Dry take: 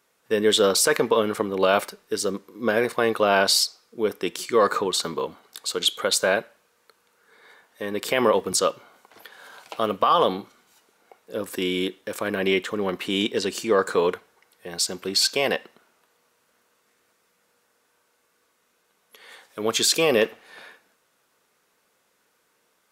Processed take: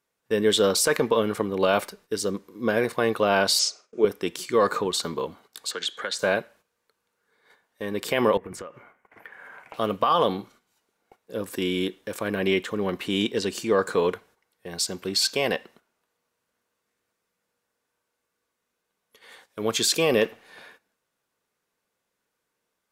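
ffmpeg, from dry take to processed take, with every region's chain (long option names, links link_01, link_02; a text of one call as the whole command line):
ffmpeg -i in.wav -filter_complex "[0:a]asettb=1/sr,asplit=3[link_01][link_02][link_03];[link_01]atrim=end=3.594[link_04];[link_02]atrim=start=3.59:end=4.05,asetpts=PTS-STARTPTS,afade=type=in:duration=0.004:curve=qsin,afade=type=out:start_time=0.456:duration=0.004:curve=qsin,agate=range=-13dB:threshold=-60dB:ratio=16:release=100:detection=peak,highpass=190,equalizer=frequency=400:width_type=q:width=4:gain=9,equalizer=frequency=610:width_type=q:width=4:gain=9,equalizer=frequency=1300:width_type=q:width=4:gain=8,equalizer=frequency=2500:width_type=q:width=4:gain=7,equalizer=frequency=4200:width_type=q:width=4:gain=-5,equalizer=frequency=6400:width_type=q:width=4:gain=8,lowpass=frequency=8500:width=0.5412,lowpass=frequency=8500:width=1.3066,asplit=2[link_05][link_06];[link_06]adelay=45,volume=-3.5dB[link_07];[link_05][link_07]amix=inputs=2:normalize=0,atrim=end_sample=20286[link_08];[link_03]atrim=start=4.046[link_09];[link_04][link_08]acrossfade=duration=0.004:curve1=hsin:curve2=qsin[link_10];[link_10][link_09]acrossfade=duration=0.004:curve1=qsin:curve2=hsin,asettb=1/sr,asplit=3[link_11][link_12][link_13];[link_11]atrim=end=5.714[link_14];[link_12]atrim=start=5.71:end=6.19,asetpts=PTS-STARTPTS,afade=type=in:duration=0.004:curve=qsin,afade=type=out:start_time=0.476:duration=0.004:curve=qsin,highpass=150,lowpass=6800,equalizer=frequency=1700:width_type=o:width=0.35:gain=14.5,acrossover=split=190|470|1500|3900[link_15][link_16][link_17][link_18][link_19];[link_15]acompressor=threshold=-58dB:ratio=3[link_20];[link_16]acompressor=threshold=-45dB:ratio=3[link_21];[link_17]acompressor=threshold=-33dB:ratio=3[link_22];[link_18]acompressor=threshold=-33dB:ratio=3[link_23];[link_19]acompressor=threshold=-29dB:ratio=3[link_24];[link_20][link_21][link_22][link_23][link_24]amix=inputs=5:normalize=0[link_25];[link_13]atrim=start=6.186[link_26];[link_14][link_25]acrossfade=duration=0.004:curve1=hsin:curve2=qsin[link_27];[link_27][link_26]acrossfade=duration=0.004:curve1=qsin:curve2=hsin,asettb=1/sr,asplit=3[link_28][link_29][link_30];[link_28]atrim=end=8.374[link_31];[link_29]atrim=start=8.37:end=9.74,asetpts=PTS-STARTPTS,afade=type=in:duration=0.004:curve=qsin,afade=type=out:start_time=1.366:duration=0.004:curve=qsin,highshelf=frequency=2900:width_type=q:width=3:gain=-11.5,acompressor=threshold=-32dB:ratio=12:attack=3.2:release=140:knee=1:detection=peak[link_32];[link_30]atrim=start=9.736[link_33];[link_31][link_32]acrossfade=duration=0.004:curve1=hsin:curve2=qsin[link_34];[link_34][link_33]acrossfade=duration=0.004:curve1=qsin:curve2=hsin,agate=range=-10dB:threshold=-50dB:ratio=16:detection=peak,lowshelf=frequency=150:gain=9.5,bandreject=frequency=1300:width=24,volume=-2.5dB" out.wav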